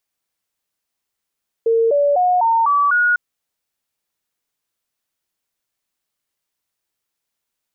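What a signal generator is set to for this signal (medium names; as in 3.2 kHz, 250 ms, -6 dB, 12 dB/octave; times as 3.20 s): stepped sine 456 Hz up, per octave 3, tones 6, 0.25 s, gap 0.00 s -12 dBFS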